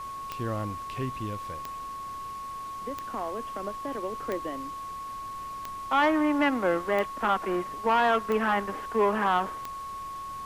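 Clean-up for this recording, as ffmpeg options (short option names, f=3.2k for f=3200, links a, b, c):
-af "adeclick=t=4,bandreject=f=1.1k:w=30,afftdn=nr=30:nf=-38"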